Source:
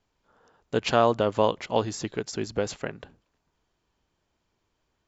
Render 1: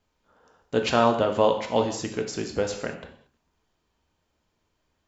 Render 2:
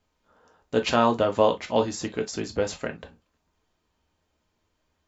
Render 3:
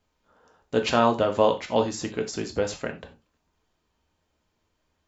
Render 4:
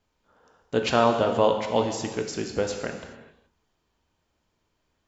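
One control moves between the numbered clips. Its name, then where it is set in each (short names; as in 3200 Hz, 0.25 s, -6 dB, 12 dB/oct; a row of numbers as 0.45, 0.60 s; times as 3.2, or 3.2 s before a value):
non-linear reverb, gate: 250, 80, 120, 450 ms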